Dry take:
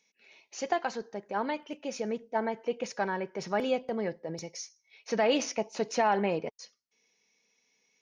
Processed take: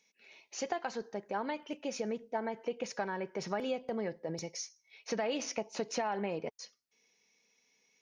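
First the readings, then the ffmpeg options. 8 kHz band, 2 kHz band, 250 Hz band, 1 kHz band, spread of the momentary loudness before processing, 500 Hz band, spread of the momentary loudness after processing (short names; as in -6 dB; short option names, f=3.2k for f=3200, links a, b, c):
-2.0 dB, -6.0 dB, -5.0 dB, -6.5 dB, 15 LU, -5.5 dB, 8 LU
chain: -af "acompressor=threshold=-32dB:ratio=4"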